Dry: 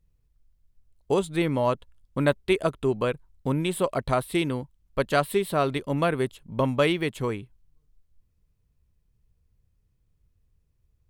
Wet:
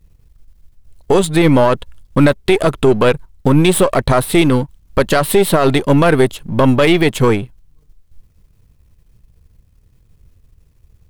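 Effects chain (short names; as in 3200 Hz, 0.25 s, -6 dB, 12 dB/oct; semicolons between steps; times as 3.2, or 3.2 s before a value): half-wave gain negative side -7 dB; maximiser +21 dB; gain -1 dB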